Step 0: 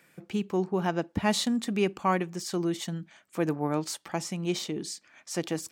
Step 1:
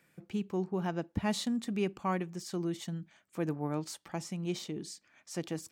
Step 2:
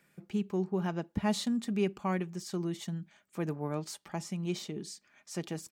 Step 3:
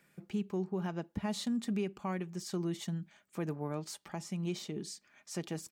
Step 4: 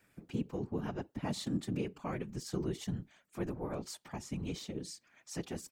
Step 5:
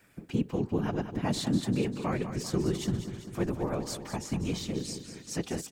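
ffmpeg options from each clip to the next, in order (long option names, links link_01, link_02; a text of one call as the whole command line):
ffmpeg -i in.wav -af "lowshelf=frequency=180:gain=8.5,volume=-8dB" out.wav
ffmpeg -i in.wav -af "aecho=1:1:4.9:0.32" out.wav
ffmpeg -i in.wav -af "alimiter=level_in=1.5dB:limit=-24dB:level=0:latency=1:release=295,volume=-1.5dB" out.wav
ffmpeg -i in.wav -af "afftfilt=real='hypot(re,im)*cos(2*PI*random(0))':imag='hypot(re,im)*sin(2*PI*random(1))':win_size=512:overlap=0.75,volume=4.5dB" out.wav
ffmpeg -i in.wav -af "aecho=1:1:197|394|591|788|985|1182|1379:0.316|0.183|0.106|0.0617|0.0358|0.0208|0.012,volume=7dB" out.wav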